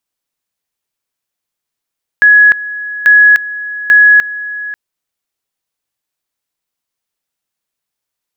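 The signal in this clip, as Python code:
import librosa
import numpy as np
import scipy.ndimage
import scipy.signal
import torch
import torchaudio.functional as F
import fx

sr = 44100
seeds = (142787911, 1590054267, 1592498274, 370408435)

y = fx.two_level_tone(sr, hz=1680.0, level_db=-2.0, drop_db=16.5, high_s=0.3, low_s=0.54, rounds=3)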